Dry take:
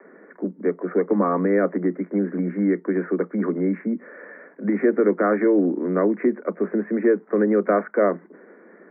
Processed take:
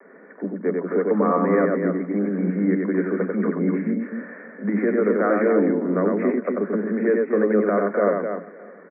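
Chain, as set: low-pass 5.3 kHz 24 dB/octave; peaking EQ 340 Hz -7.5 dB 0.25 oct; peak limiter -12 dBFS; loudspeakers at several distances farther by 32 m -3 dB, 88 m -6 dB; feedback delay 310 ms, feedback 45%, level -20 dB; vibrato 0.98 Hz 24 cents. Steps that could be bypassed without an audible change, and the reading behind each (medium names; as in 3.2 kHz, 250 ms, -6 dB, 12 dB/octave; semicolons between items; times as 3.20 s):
low-pass 5.3 kHz: input has nothing above 2 kHz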